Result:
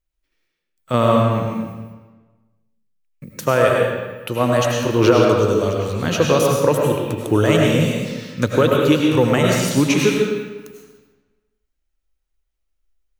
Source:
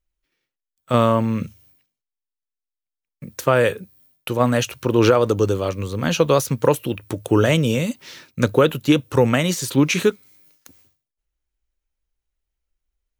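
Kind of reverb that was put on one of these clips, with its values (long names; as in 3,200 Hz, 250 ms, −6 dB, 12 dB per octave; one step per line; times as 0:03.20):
comb and all-pass reverb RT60 1.3 s, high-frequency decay 0.8×, pre-delay 60 ms, DRR −1 dB
level −1 dB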